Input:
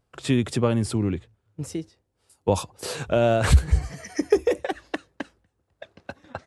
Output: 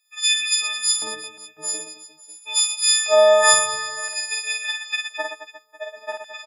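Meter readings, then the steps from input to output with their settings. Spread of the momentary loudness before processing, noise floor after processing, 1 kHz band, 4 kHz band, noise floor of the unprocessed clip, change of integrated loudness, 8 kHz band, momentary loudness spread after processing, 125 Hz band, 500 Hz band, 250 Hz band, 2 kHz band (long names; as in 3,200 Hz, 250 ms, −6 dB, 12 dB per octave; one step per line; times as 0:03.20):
19 LU, −55 dBFS, +6.0 dB, +17.0 dB, −75 dBFS, +5.5 dB, +18.0 dB, 21 LU, below −30 dB, +4.0 dB, below −20 dB, +10.5 dB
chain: every partial snapped to a pitch grid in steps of 6 semitones
dynamic equaliser 410 Hz, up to −6 dB, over −32 dBFS, Q 1.1
auto-filter high-pass square 0.49 Hz 690–2,600 Hz
reverse bouncing-ball delay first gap 50 ms, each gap 1.4×, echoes 5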